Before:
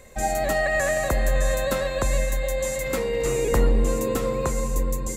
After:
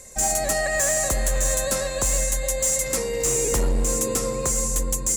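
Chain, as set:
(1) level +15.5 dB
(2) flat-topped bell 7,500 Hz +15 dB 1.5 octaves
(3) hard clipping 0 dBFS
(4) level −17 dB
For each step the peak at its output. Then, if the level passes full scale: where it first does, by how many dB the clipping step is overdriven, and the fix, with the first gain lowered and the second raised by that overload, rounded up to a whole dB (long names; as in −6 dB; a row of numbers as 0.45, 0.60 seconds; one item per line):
+6.0, +10.0, 0.0, −17.0 dBFS
step 1, 10.0 dB
step 1 +5.5 dB, step 4 −7 dB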